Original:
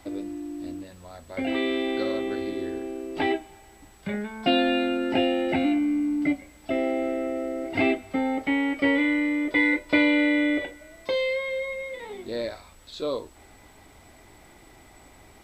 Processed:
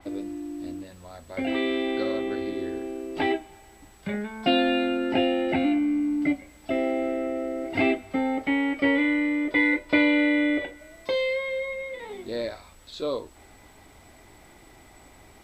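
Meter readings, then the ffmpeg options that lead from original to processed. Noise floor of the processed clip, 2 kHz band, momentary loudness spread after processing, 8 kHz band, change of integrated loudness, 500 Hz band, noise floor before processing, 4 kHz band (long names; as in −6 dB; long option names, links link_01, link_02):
−52 dBFS, 0.0 dB, 14 LU, can't be measured, 0.0 dB, 0.0 dB, −52 dBFS, −0.5 dB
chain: -af "adynamicequalizer=threshold=0.00631:dfrequency=4100:dqfactor=0.7:tfrequency=4100:tqfactor=0.7:attack=5:release=100:ratio=0.375:range=2:mode=cutabove:tftype=highshelf"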